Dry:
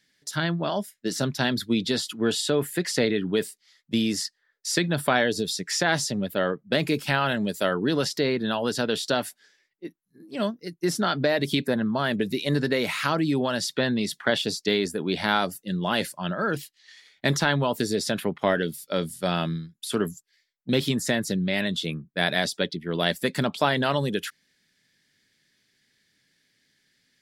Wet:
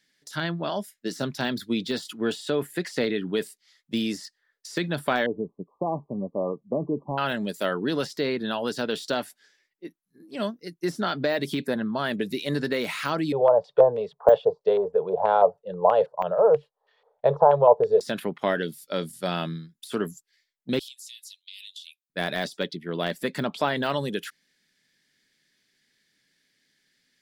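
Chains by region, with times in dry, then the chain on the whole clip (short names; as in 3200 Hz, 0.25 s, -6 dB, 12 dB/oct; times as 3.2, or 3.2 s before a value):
5.26–7.18 de-esser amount 45% + brick-wall FIR low-pass 1200 Hz
13.32–18.01 EQ curve 140 Hz 0 dB, 300 Hz -24 dB, 460 Hz +15 dB, 1100 Hz +2 dB, 2100 Hz -26 dB, 3500 Hz -15 dB + LFO low-pass square 3.1 Hz 930–2500 Hz
20.79–22.1 steep high-pass 2800 Hz 48 dB/oct + compressor, threshold -37 dBFS
22.89–23.76 high shelf 4400 Hz -7.5 dB + upward compressor, threshold -29 dBFS
whole clip: bell 82 Hz -10 dB 1.2 oct; de-esser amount 75%; gain -1.5 dB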